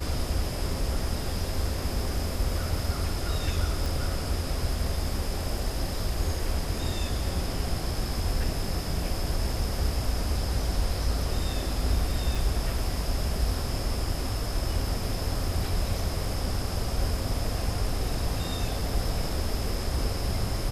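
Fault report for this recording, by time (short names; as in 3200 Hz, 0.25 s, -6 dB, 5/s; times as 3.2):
3.86 pop
12.35 gap 4.4 ms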